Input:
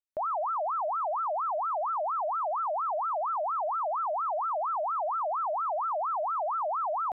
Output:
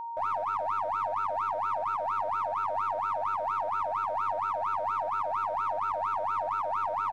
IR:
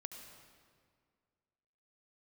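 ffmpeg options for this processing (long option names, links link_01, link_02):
-filter_complex "[0:a]lowpass=frequency=1300:width_type=q:width=1.6,tremolo=f=98:d=0.71,aeval=exprs='val(0)+0.02*sin(2*PI*930*n/s)':channel_layout=same,asplit=2[link_01][link_02];[link_02]aeval=exprs='clip(val(0),-1,0.0211)':channel_layout=same,volume=-6dB[link_03];[link_01][link_03]amix=inputs=2:normalize=0,asplit=2[link_04][link_05];[link_05]adelay=1574,volume=-29dB,highshelf=frequency=4000:gain=-35.4[link_06];[link_04][link_06]amix=inputs=2:normalize=0,volume=-4dB"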